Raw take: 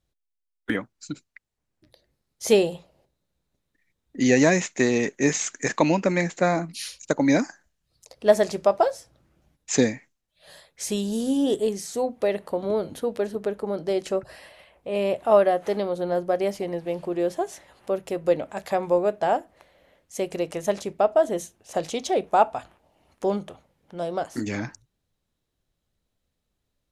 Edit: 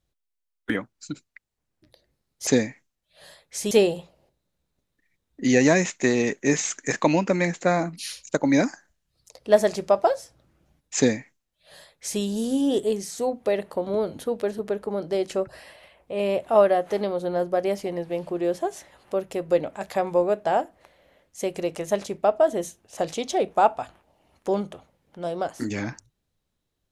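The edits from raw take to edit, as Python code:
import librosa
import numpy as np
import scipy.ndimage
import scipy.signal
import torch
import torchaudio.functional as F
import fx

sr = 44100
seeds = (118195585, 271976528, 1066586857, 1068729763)

y = fx.edit(x, sr, fx.duplicate(start_s=9.73, length_s=1.24, to_s=2.47), tone=tone)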